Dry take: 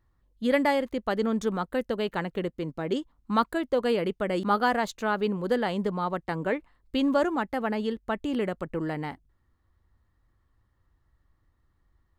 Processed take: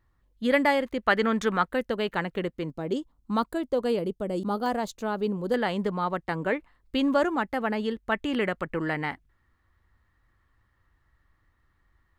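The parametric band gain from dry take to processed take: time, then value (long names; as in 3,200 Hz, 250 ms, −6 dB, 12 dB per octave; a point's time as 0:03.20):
parametric band 1,900 Hz 1.7 octaves
+4 dB
from 0:01.03 +13.5 dB
from 0:01.68 +4 dB
from 0:02.70 −6.5 dB
from 0:03.99 −15 dB
from 0:04.66 −8.5 dB
from 0:05.54 +3 dB
from 0:08.12 +9.5 dB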